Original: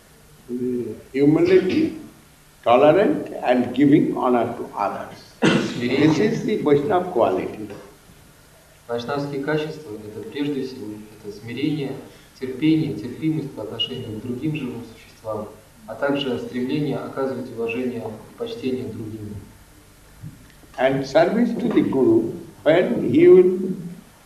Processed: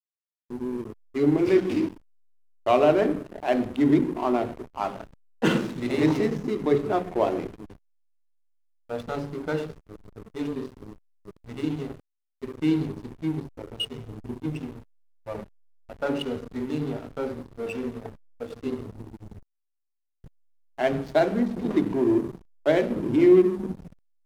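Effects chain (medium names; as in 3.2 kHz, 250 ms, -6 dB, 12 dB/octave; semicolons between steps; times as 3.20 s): hysteresis with a dead band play -24 dBFS; trim -5 dB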